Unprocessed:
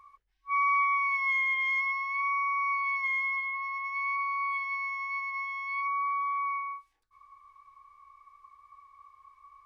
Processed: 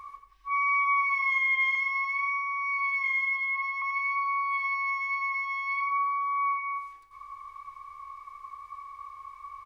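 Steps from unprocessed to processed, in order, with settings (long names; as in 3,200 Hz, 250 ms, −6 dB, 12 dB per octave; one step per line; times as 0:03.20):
0:01.75–0:03.82: high-pass filter 1,100 Hz 24 dB per octave
in parallel at −2 dB: compressor whose output falls as the input rises −42 dBFS, ratio −1
on the sum: repeating echo 89 ms, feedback 41%, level −9 dB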